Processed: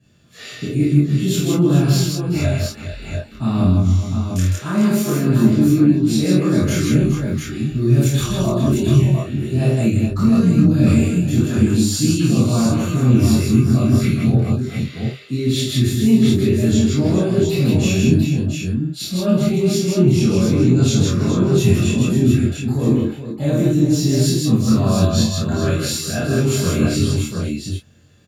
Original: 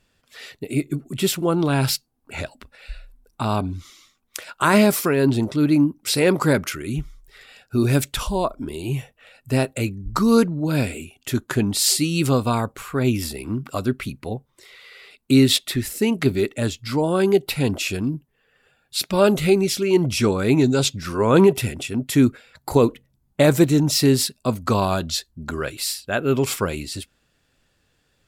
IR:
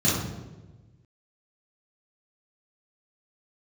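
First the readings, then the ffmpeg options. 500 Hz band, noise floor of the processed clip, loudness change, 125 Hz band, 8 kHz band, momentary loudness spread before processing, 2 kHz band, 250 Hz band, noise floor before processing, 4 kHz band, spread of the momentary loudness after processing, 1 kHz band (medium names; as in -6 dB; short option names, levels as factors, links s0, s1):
-0.5 dB, -35 dBFS, +4.0 dB, +9.5 dB, +1.0 dB, 14 LU, -2.0 dB, +6.0 dB, -67 dBFS, -0.5 dB, 9 LU, -5.0 dB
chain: -filter_complex "[0:a]areverse,acompressor=threshold=0.0447:ratio=10,areverse,asplit=2[s0][s1];[s1]adelay=23,volume=0.708[s2];[s0][s2]amix=inputs=2:normalize=0,aecho=1:1:48|159|419|700:0.562|0.708|0.316|0.562[s3];[1:a]atrim=start_sample=2205,atrim=end_sample=3087[s4];[s3][s4]afir=irnorm=-1:irlink=0,volume=0.316"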